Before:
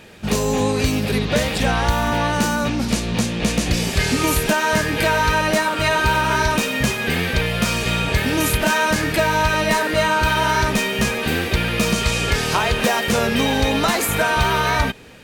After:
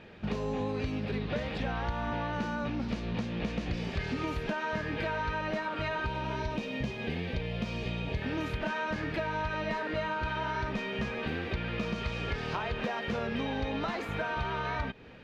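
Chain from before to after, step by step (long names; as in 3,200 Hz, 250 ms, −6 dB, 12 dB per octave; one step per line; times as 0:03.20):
0:06.06–0:08.22: parametric band 1,400 Hz −10.5 dB 0.93 octaves
downward compressor 3 to 1, threshold −25 dBFS, peak gain reduction 9.5 dB
high-frequency loss of the air 250 metres
level −6 dB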